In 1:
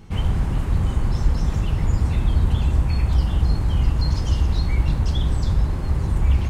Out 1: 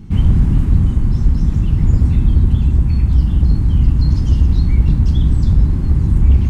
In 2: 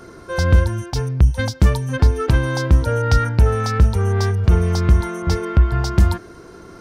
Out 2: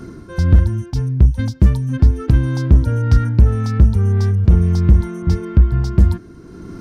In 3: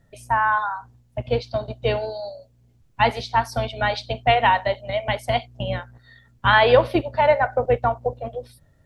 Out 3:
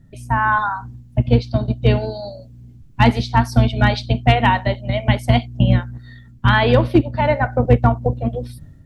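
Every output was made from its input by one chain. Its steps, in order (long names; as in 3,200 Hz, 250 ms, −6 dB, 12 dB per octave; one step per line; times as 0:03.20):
low shelf with overshoot 370 Hz +10.5 dB, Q 1.5
automatic gain control gain up to 11.5 dB
hard clipping −3.5 dBFS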